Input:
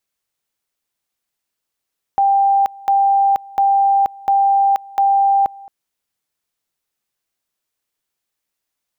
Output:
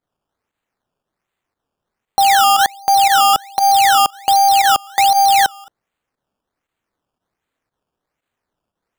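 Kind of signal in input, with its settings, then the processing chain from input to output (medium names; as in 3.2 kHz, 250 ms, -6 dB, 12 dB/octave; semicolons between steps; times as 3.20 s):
two-level tone 791 Hz -10.5 dBFS, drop 23.5 dB, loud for 0.48 s, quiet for 0.22 s, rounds 5
in parallel at -9 dB: bit crusher 4-bit; on the sum: volume shaper 117 bpm, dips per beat 1, -11 dB, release 66 ms; decimation with a swept rate 15×, swing 100% 1.3 Hz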